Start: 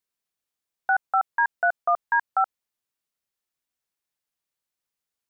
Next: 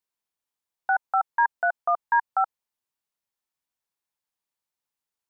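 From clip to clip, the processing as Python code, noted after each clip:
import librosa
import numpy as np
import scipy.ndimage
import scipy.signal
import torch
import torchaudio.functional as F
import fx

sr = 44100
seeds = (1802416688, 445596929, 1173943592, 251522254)

y = fx.peak_eq(x, sr, hz=920.0, db=6.0, octaves=0.48)
y = y * 10.0 ** (-3.0 / 20.0)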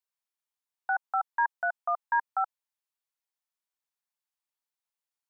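y = scipy.signal.sosfilt(scipy.signal.butter(2, 620.0, 'highpass', fs=sr, output='sos'), x)
y = y * 10.0 ** (-4.5 / 20.0)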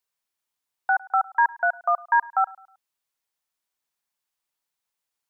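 y = fx.echo_feedback(x, sr, ms=105, feedback_pct=40, wet_db=-22.5)
y = y * 10.0 ** (7.0 / 20.0)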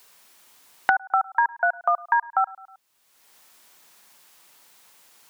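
y = fx.band_squash(x, sr, depth_pct=100)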